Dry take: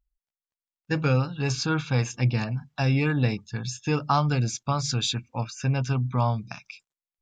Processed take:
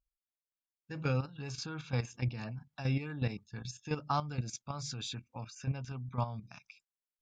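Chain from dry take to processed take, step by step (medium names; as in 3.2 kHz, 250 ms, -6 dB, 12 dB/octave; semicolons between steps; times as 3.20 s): level held to a coarse grid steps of 11 dB; trim -7.5 dB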